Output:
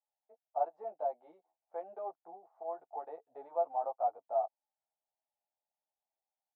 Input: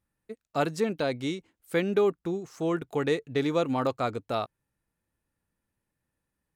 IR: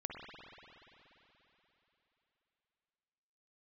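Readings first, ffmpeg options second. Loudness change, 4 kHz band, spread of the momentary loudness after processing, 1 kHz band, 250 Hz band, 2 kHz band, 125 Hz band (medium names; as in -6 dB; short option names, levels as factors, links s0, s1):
-9.0 dB, under -40 dB, 14 LU, -2.0 dB, -33.5 dB, under -30 dB, under -40 dB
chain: -filter_complex "[0:a]asuperpass=centerf=740:order=4:qfactor=3.5,asplit=2[s0][s1];[s1]adelay=11.3,afreqshift=1.1[s2];[s0][s2]amix=inputs=2:normalize=1,volume=1.58"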